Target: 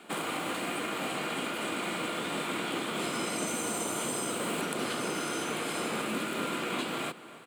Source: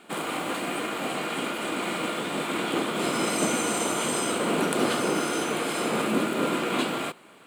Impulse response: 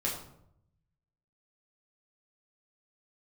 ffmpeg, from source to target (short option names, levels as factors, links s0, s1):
-filter_complex "[0:a]asettb=1/sr,asplit=3[s0][s1][s2];[s0]atrim=end=3.474[s3];[s1]atrim=start=3.47:end=4.61,asetpts=PTS-STARTPTS,afade=t=in:d=0.004:c=qsin,afade=t=out:st=1.136:d=0.004:c=qsin,highshelf=f=9000:g=8.5[s4];[s2]atrim=start=4.606[s5];[s3][s4]acrossfade=d=0.004:c1=hsin:c2=qsin[s6];[s6][s5]acrossfade=d=0.004:c1=qsin:c2=hsin,acrossover=split=150|1200[s7][s8][s9];[s7]acompressor=threshold=0.00398:ratio=4[s10];[s8]acompressor=threshold=0.0178:ratio=4[s11];[s9]acompressor=threshold=0.0178:ratio=4[s12];[s10][s11][s12]amix=inputs=3:normalize=0,asplit=2[s13][s14];[s14]adelay=285.7,volume=0.158,highshelf=f=4000:g=-6.43[s15];[s13][s15]amix=inputs=2:normalize=0"